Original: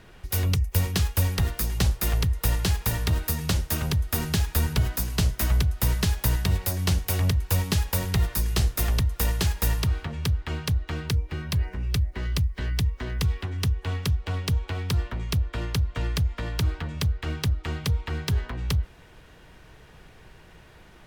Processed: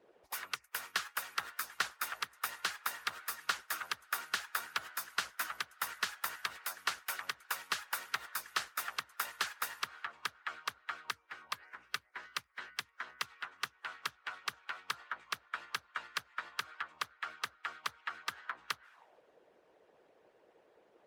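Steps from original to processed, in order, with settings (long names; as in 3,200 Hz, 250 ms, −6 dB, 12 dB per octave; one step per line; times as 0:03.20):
envelope filter 430–1,400 Hz, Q 3.3, up, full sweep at −25.5 dBFS
RIAA equalisation recording
harmonic and percussive parts rebalanced harmonic −16 dB
level +5 dB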